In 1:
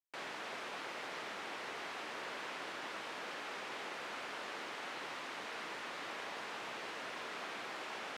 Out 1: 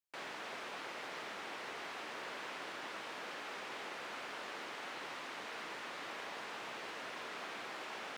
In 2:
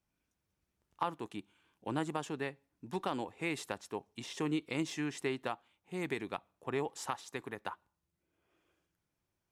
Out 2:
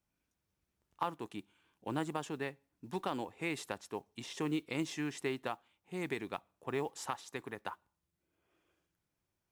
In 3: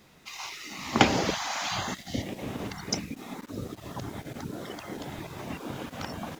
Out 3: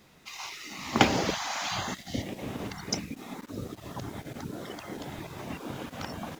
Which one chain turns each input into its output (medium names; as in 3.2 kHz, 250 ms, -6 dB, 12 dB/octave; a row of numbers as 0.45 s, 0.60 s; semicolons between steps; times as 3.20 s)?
modulation noise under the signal 32 dB; trim -1 dB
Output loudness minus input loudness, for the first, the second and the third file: -1.0 LU, -1.0 LU, -1.0 LU